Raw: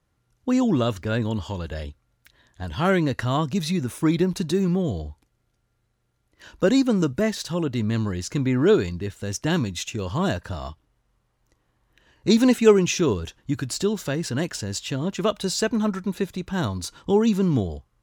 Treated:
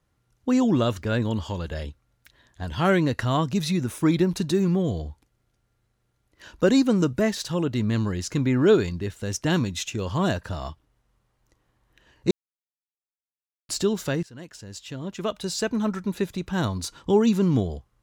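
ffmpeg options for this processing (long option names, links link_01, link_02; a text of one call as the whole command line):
ffmpeg -i in.wav -filter_complex "[0:a]asplit=4[link_01][link_02][link_03][link_04];[link_01]atrim=end=12.31,asetpts=PTS-STARTPTS,afade=type=out:start_time=12.306:duration=0.004:curve=hsin[link_05];[link_02]atrim=start=12.31:end=13.69,asetpts=PTS-STARTPTS,volume=0[link_06];[link_03]atrim=start=13.69:end=14.23,asetpts=PTS-STARTPTS,afade=type=in:duration=0.004:curve=hsin,afade=type=out:start_time=0.536:duration=0.004:curve=hsin:silence=0.0891251[link_07];[link_04]atrim=start=14.23,asetpts=PTS-STARTPTS,afade=type=in:duration=2.08:silence=0.0891251[link_08];[link_05][link_06][link_07][link_08]concat=n=4:v=0:a=1" out.wav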